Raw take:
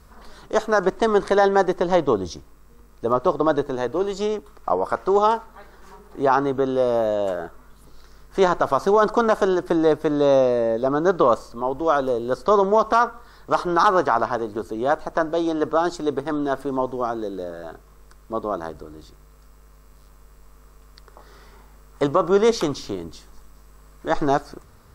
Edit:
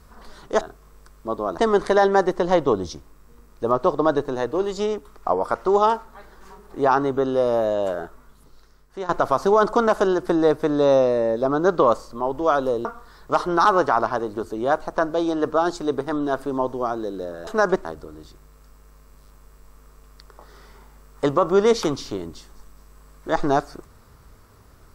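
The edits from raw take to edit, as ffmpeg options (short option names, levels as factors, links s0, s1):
-filter_complex "[0:a]asplit=7[s0][s1][s2][s3][s4][s5][s6];[s0]atrim=end=0.612[s7];[s1]atrim=start=17.658:end=18.632[s8];[s2]atrim=start=0.988:end=8.5,asetpts=PTS-STARTPTS,afade=t=out:st=6.422:d=1.09:silence=0.149624[s9];[s3]atrim=start=8.5:end=12.262,asetpts=PTS-STARTPTS,afade=t=in:d=0.004:c=hsin:silence=0.149624[s10];[s4]atrim=start=13.038:end=17.662[s11];[s5]atrim=start=0.608:end=0.992[s12];[s6]atrim=start=18.628[s13];[s7][s8]acrossfade=d=0.004:c1=hsin:c2=hsin[s14];[s9][s10]concat=n=2:v=0:a=1[s15];[s14][s15]acrossfade=d=0.004:c1=hsin:c2=hsin[s16];[s16][s11]acrossfade=d=0.004:c1=hsin:c2=hsin[s17];[s17][s12]acrossfade=d=0.004:c1=hsin:c2=hsin[s18];[s18][s13]acrossfade=d=0.004:c1=hsin:c2=hsin"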